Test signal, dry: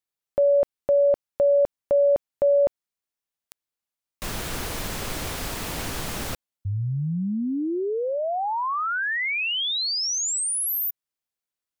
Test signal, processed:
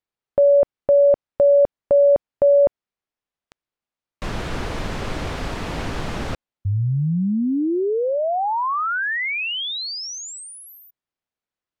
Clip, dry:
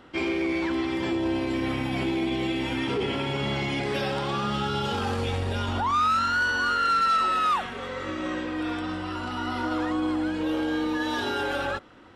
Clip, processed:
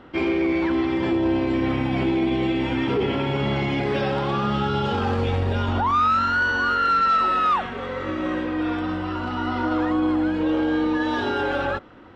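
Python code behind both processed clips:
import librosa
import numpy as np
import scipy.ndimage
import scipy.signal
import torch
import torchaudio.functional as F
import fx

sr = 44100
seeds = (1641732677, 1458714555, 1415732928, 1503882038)

y = fx.spacing_loss(x, sr, db_at_10k=20)
y = y * 10.0 ** (6.0 / 20.0)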